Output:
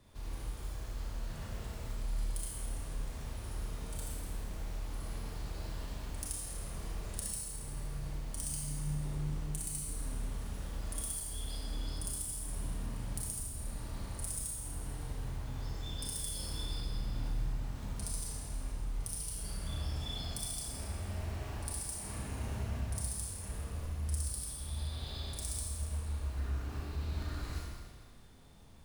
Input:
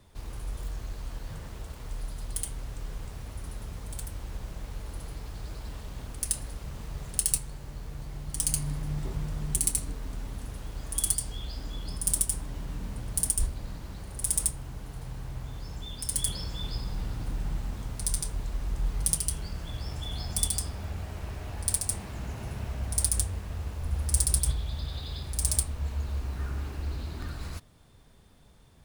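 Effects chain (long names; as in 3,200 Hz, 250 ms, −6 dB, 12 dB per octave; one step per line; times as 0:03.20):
downward compressor, threshold −34 dBFS, peak gain reduction 14.5 dB
four-comb reverb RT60 1.6 s, combs from 27 ms, DRR −4 dB
level −5.5 dB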